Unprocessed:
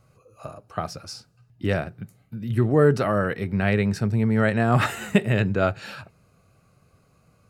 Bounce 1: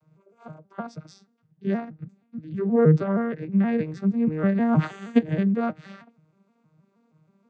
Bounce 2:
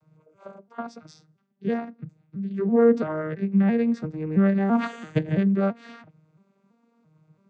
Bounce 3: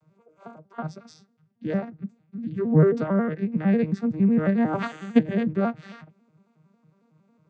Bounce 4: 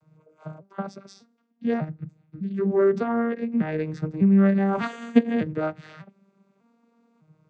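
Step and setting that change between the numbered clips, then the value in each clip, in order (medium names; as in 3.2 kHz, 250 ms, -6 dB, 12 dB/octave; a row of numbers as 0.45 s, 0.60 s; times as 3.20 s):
vocoder on a broken chord, a note every: 158 ms, 335 ms, 91 ms, 600 ms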